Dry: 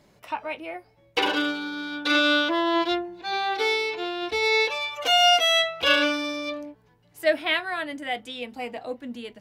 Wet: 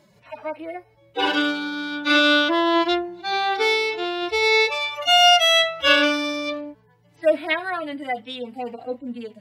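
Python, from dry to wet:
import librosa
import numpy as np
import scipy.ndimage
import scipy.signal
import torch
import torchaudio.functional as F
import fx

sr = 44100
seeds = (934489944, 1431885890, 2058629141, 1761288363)

y = fx.hpss_only(x, sr, part='harmonic')
y = y * librosa.db_to_amplitude(4.0)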